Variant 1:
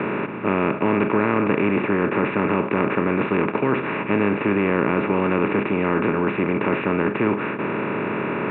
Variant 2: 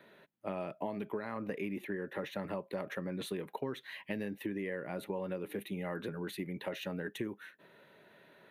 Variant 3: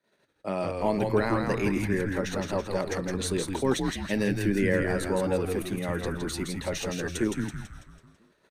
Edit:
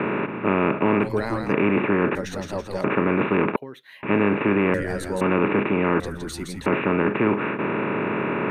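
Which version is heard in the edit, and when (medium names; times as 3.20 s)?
1
1.05–1.49 s: from 3, crossfade 0.10 s
2.15–2.84 s: from 3
3.56–4.03 s: from 2
4.74–5.21 s: from 3
6.00–6.66 s: from 3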